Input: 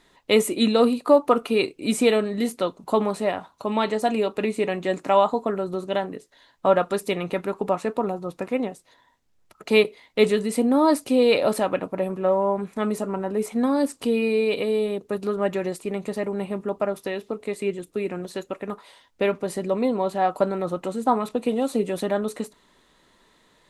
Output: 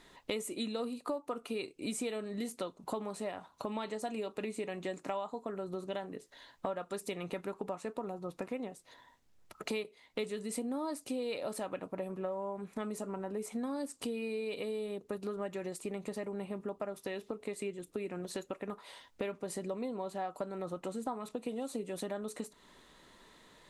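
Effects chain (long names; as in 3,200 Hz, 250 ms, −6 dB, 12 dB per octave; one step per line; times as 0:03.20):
dynamic equaliser 7,600 Hz, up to +6 dB, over −49 dBFS, Q 0.91
downward compressor 5 to 1, threshold −37 dBFS, peak gain reduction 23 dB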